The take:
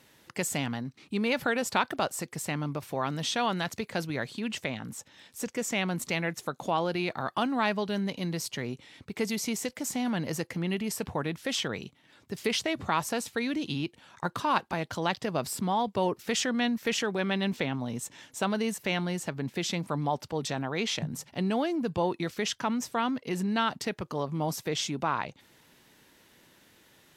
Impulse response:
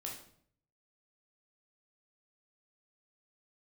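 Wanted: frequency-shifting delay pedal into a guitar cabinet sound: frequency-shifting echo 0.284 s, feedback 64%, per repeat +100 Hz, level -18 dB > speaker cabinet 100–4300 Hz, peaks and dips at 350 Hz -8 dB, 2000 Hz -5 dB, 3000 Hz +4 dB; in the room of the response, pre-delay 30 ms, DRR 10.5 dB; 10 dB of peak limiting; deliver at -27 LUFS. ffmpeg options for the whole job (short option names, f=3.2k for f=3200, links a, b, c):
-filter_complex "[0:a]alimiter=limit=-21dB:level=0:latency=1,asplit=2[a][b];[1:a]atrim=start_sample=2205,adelay=30[c];[b][c]afir=irnorm=-1:irlink=0,volume=-9dB[d];[a][d]amix=inputs=2:normalize=0,asplit=7[e][f][g][h][i][j][k];[f]adelay=284,afreqshift=100,volume=-18dB[l];[g]adelay=568,afreqshift=200,volume=-21.9dB[m];[h]adelay=852,afreqshift=300,volume=-25.8dB[n];[i]adelay=1136,afreqshift=400,volume=-29.6dB[o];[j]adelay=1420,afreqshift=500,volume=-33.5dB[p];[k]adelay=1704,afreqshift=600,volume=-37.4dB[q];[e][l][m][n][o][p][q]amix=inputs=7:normalize=0,highpass=100,equalizer=f=350:t=q:w=4:g=-8,equalizer=f=2k:t=q:w=4:g=-5,equalizer=f=3k:t=q:w=4:g=4,lowpass=f=4.3k:w=0.5412,lowpass=f=4.3k:w=1.3066,volume=6.5dB"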